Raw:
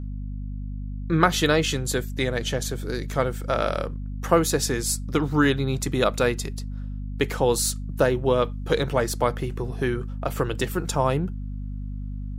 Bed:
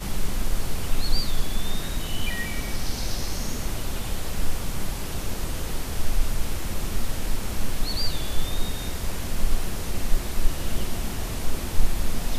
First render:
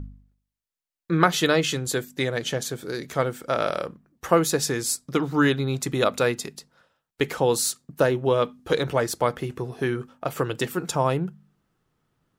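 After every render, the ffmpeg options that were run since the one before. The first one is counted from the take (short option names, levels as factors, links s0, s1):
-af "bandreject=f=50:t=h:w=4,bandreject=f=100:t=h:w=4,bandreject=f=150:t=h:w=4,bandreject=f=200:t=h:w=4,bandreject=f=250:t=h:w=4"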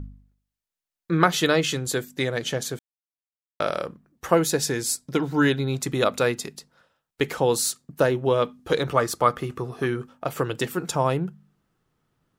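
-filter_complex "[0:a]asettb=1/sr,asplit=3[s0][s1][s2];[s0]atrim=end=4.344[s3];[s1]atrim=start=4.34:end=5.72,asetpts=PTS-STARTPTS,afade=t=in:d=0.004:c=qsin,afade=t=out:st=1.376:d=0.004:c=qsin,asuperstop=centerf=1200:order=4:qfactor=7[s4];[s2]atrim=start=5.716[s5];[s3][s4]acrossfade=d=0.004:c1=hsin:c2=qsin[s6];[s6][s5]acrossfade=d=0.004:c1=qsin:c2=hsin,asettb=1/sr,asplit=3[s7][s8][s9];[s7]atrim=end=8.884[s10];[s8]atrim=start=8.88:end=9.86,asetpts=PTS-STARTPTS,afade=t=in:d=0.004:c=qsin,afade=t=out:st=0.976:d=0.004:c=qsin,equalizer=f=1200:w=7.1:g=12.5[s11];[s9]atrim=start=9.856[s12];[s10][s11]acrossfade=d=0.004:c1=hsin:c2=qsin[s13];[s13][s12]acrossfade=d=0.004:c1=qsin:c2=hsin,asplit=3[s14][s15][s16];[s14]atrim=end=2.79,asetpts=PTS-STARTPTS,afade=t=out:st=2.786:d=0.004:c=hsin[s17];[s15]atrim=start=2.79:end=3.6,asetpts=PTS-STARTPTS,volume=0[s18];[s16]atrim=start=3.6,asetpts=PTS-STARTPTS,afade=t=in:d=0.004:c=hsin[s19];[s17][s18][s19]concat=n=3:v=0:a=1"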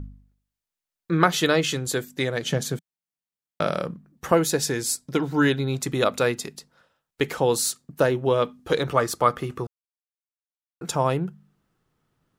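-filter_complex "[0:a]asettb=1/sr,asplit=3[s0][s1][s2];[s0]atrim=end=2.494[s3];[s1]atrim=start=2.49:end=4.32,asetpts=PTS-STARTPTS,afade=t=in:d=0.004:c=qsin,afade=t=out:st=1.826:d=0.004:c=qsin,equalizer=f=170:t=o:w=0.9:g=10.5[s4];[s2]atrim=start=4.316[s5];[s3][s4]acrossfade=d=0.004:c1=hsin:c2=qsin[s6];[s6][s5]acrossfade=d=0.004:c1=qsin:c2=hsin,asplit=3[s7][s8][s9];[s7]atrim=end=9.67,asetpts=PTS-STARTPTS,afade=t=out:st=9.666:d=0.004:c=hsin[s10];[s8]atrim=start=9.67:end=10.81,asetpts=PTS-STARTPTS,volume=0[s11];[s9]atrim=start=10.81,asetpts=PTS-STARTPTS,afade=t=in:d=0.004:c=hsin[s12];[s10][s11][s12]concat=n=3:v=0:a=1"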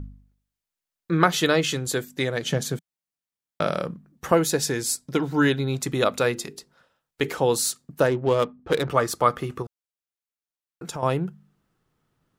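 -filter_complex "[0:a]asettb=1/sr,asplit=3[s0][s1][s2];[s0]atrim=end=6.224[s3];[s1]atrim=start=6.22:end=7.42,asetpts=PTS-STARTPTS,afade=t=in:d=0.004:c=qsin,afade=t=out:st=1.196:d=0.004:c=qsin,bandreject=f=50:t=h:w=6,bandreject=f=100:t=h:w=6,bandreject=f=150:t=h:w=6,bandreject=f=200:t=h:w=6,bandreject=f=250:t=h:w=6,bandreject=f=300:t=h:w=6,bandreject=f=350:t=h:w=6,bandreject=f=400:t=h:w=6,bandreject=f=450:t=h:w=6,bandreject=f=500:t=h:w=6[s4];[s2]atrim=start=7.416[s5];[s3][s4]acrossfade=d=0.004:c1=hsin:c2=qsin[s6];[s6][s5]acrossfade=d=0.004:c1=qsin:c2=hsin,asettb=1/sr,asplit=3[s7][s8][s9];[s7]atrim=end=8.064[s10];[s8]atrim=start=8.06:end=8.9,asetpts=PTS-STARTPTS,afade=t=in:d=0.004:c=qsin,afade=t=out:st=0.836:d=0.004:c=qsin,adynamicsmooth=sensitivity=5:basefreq=1100[s11];[s9]atrim=start=8.896[s12];[s10][s11]acrossfade=d=0.004:c1=hsin:c2=qsin[s13];[s13][s12]acrossfade=d=0.004:c1=qsin:c2=hsin,asettb=1/sr,asplit=3[s14][s15][s16];[s14]atrim=end=9.624[s17];[s15]atrim=start=9.62:end=11.03,asetpts=PTS-STARTPTS,afade=t=in:d=0.004:c=qsin,afade=t=out:st=1.406:d=0.004:c=qsin,acompressor=threshold=0.0251:ratio=2.5:attack=3.2:release=140:knee=1:detection=peak[s18];[s16]atrim=start=11.026[s19];[s17][s18]acrossfade=d=0.004:c1=hsin:c2=qsin[s20];[s20][s19]acrossfade=d=0.004:c1=qsin:c2=hsin"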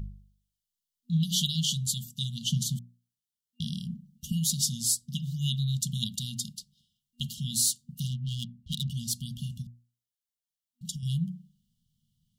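-af "afftfilt=real='re*(1-between(b*sr/4096,240,2800))':imag='im*(1-between(b*sr/4096,240,2800))':win_size=4096:overlap=0.75,bandreject=f=60:t=h:w=6,bandreject=f=120:t=h:w=6,bandreject=f=180:t=h:w=6,bandreject=f=240:t=h:w=6,bandreject=f=300:t=h:w=6,bandreject=f=360:t=h:w=6,bandreject=f=420:t=h:w=6,bandreject=f=480:t=h:w=6,bandreject=f=540:t=h:w=6,bandreject=f=600:t=h:w=6"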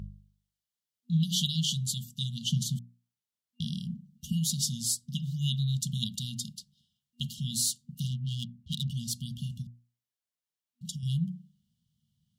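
-af "highpass=61,highshelf=f=6300:g=-5.5"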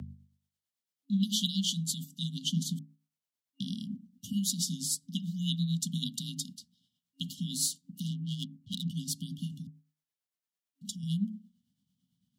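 -af "tremolo=f=8.9:d=0.46,afreqshift=33"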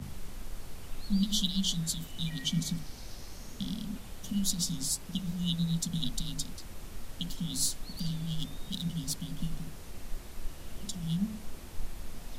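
-filter_complex "[1:a]volume=0.158[s0];[0:a][s0]amix=inputs=2:normalize=0"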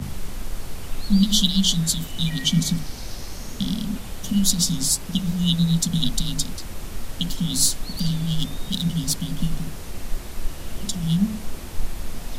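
-af "volume=3.55"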